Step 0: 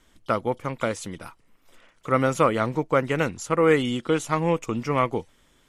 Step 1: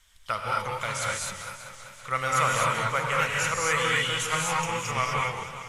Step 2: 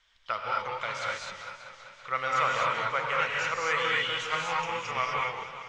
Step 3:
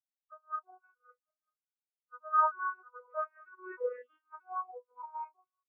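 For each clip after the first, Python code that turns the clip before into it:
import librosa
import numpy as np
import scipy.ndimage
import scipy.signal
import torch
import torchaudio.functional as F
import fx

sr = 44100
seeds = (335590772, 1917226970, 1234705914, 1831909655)

y1 = fx.tone_stack(x, sr, knobs='10-0-10')
y1 = fx.rev_gated(y1, sr, seeds[0], gate_ms=280, shape='rising', drr_db=-3.0)
y1 = fx.echo_warbled(y1, sr, ms=194, feedback_pct=73, rate_hz=2.8, cents=131, wet_db=-12.0)
y1 = y1 * 10.0 ** (4.0 / 20.0)
y2 = scipy.signal.sosfilt(scipy.signal.butter(4, 5300.0, 'lowpass', fs=sr, output='sos'), y1)
y2 = fx.bass_treble(y2, sr, bass_db=-11, treble_db=-2)
y2 = y2 * 10.0 ** (-2.0 / 20.0)
y3 = fx.vocoder_arp(y2, sr, chord='major triad', root=59, every_ms=314)
y3 = fx.spectral_expand(y3, sr, expansion=4.0)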